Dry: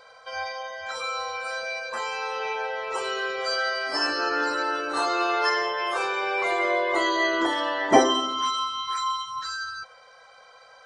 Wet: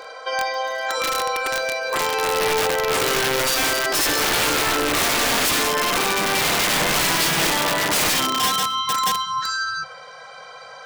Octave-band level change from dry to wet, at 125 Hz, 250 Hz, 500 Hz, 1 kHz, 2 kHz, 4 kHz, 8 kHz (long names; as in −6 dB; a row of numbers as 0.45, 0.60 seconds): can't be measured, +2.5 dB, +3.5 dB, +3.5 dB, +5.5 dB, +8.5 dB, +17.0 dB